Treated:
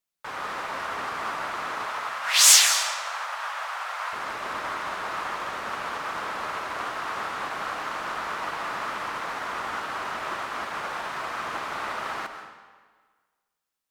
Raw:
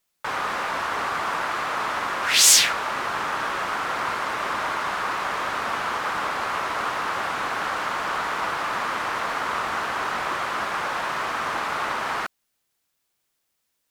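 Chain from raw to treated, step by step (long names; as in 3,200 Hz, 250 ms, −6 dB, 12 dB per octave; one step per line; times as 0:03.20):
0:01.86–0:04.13: inverse Chebyshev high-pass filter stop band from 240 Hz, stop band 50 dB
convolution reverb RT60 1.5 s, pre-delay 105 ms, DRR 4 dB
expander for the loud parts 1.5 to 1, over −35 dBFS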